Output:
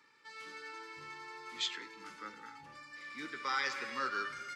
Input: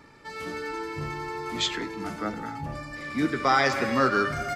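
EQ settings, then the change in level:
Butterworth band-reject 680 Hz, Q 2.6
first difference
head-to-tape spacing loss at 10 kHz 23 dB
+6.0 dB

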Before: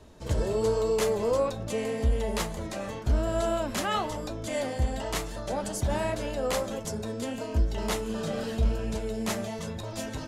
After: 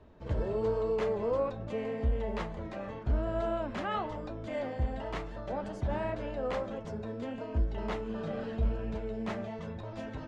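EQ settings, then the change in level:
low-pass filter 2,300 Hz 12 dB per octave
−4.5 dB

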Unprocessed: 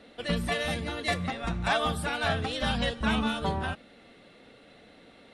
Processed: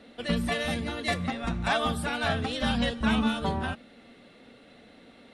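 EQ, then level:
parametric band 240 Hz +7.5 dB 0.23 octaves
0.0 dB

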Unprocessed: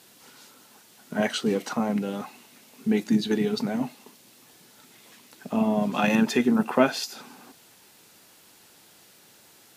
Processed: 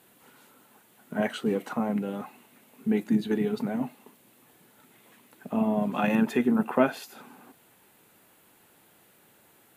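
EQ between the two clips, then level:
parametric band 5,300 Hz −15 dB 1.1 octaves
−2.0 dB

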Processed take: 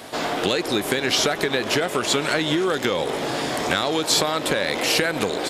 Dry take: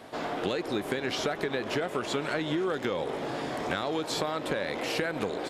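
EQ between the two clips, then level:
high-shelf EQ 3,200 Hz +11.5 dB
+7.0 dB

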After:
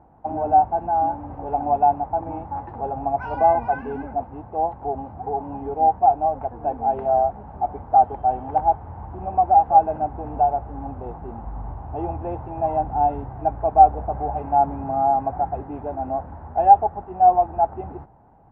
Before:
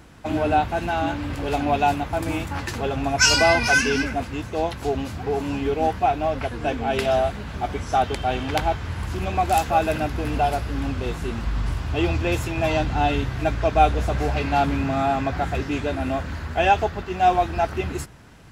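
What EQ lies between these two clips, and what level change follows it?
low-pass with resonance 810 Hz, resonance Q 6.5
high-frequency loss of the air 220 metres
−8.0 dB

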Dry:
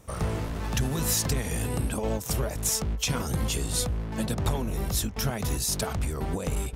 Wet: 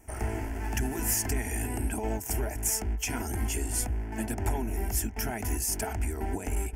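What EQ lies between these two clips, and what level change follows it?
phaser with its sweep stopped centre 780 Hz, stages 8
+1.0 dB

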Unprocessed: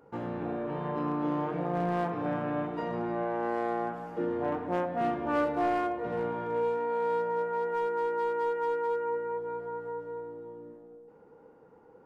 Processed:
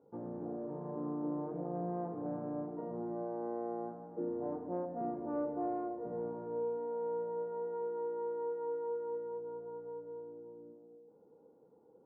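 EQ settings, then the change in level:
resonant band-pass 400 Hz, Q 0.52
Bessel low-pass filter 670 Hz, order 2
−5.0 dB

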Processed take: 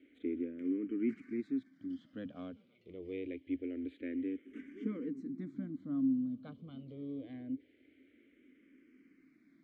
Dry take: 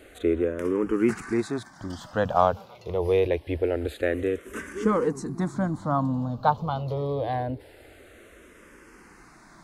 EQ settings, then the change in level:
formant filter i
high-shelf EQ 2,400 Hz −11 dB
−1.0 dB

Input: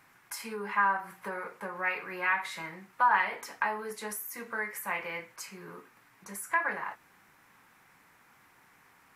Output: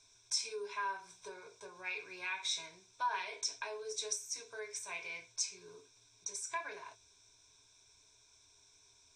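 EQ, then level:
drawn EQ curve 100 Hz 0 dB, 210 Hz −27 dB, 350 Hz −6 dB, 1,800 Hz −21 dB, 3,500 Hz +3 dB, 7,200 Hz +13 dB, 12,000 Hz −28 dB
dynamic equaliser 2,100 Hz, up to +6 dB, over −58 dBFS, Q 1.5
EQ curve with evenly spaced ripples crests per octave 1.6, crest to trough 14 dB
−2.0 dB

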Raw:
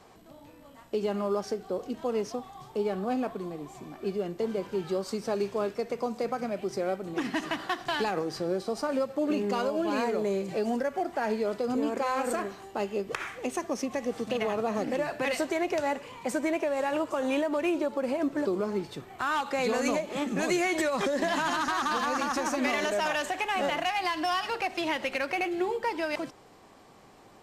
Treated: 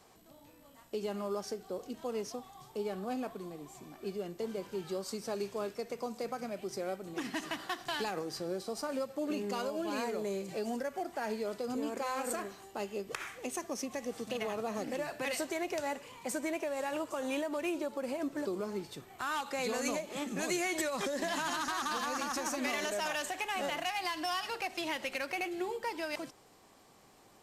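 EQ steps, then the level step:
high-shelf EQ 4,000 Hz +8 dB
high-shelf EQ 9,500 Hz +4 dB
−7.5 dB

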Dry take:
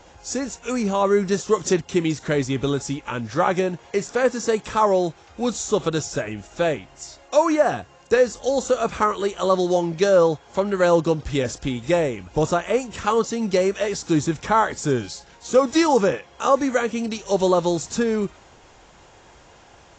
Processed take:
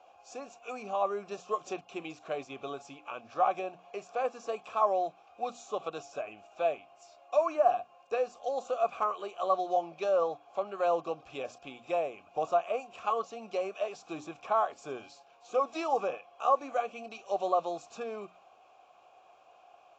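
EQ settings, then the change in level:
formant filter a
high-shelf EQ 4,600 Hz +7 dB
mains-hum notches 60/120/180/240/300 Hz
0.0 dB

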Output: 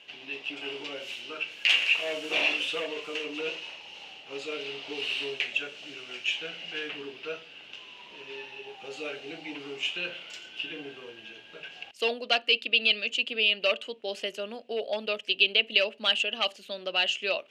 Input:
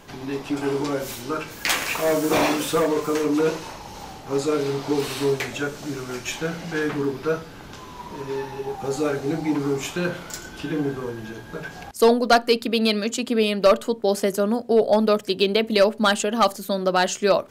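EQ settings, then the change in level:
low-pass with resonance 2,800 Hz, resonance Q 9.1
first difference
low shelf with overshoot 780 Hz +7.5 dB, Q 1.5
0.0 dB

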